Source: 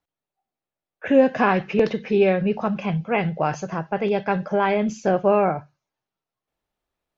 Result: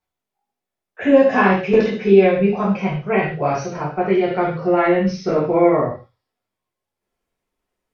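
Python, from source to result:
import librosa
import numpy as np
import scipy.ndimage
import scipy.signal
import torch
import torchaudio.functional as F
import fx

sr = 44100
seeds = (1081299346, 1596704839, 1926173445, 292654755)

y = fx.speed_glide(x, sr, from_pct=107, to_pct=74)
y = fx.rev_gated(y, sr, seeds[0], gate_ms=170, shape='falling', drr_db=-6.0)
y = F.gain(torch.from_numpy(y), -3.0).numpy()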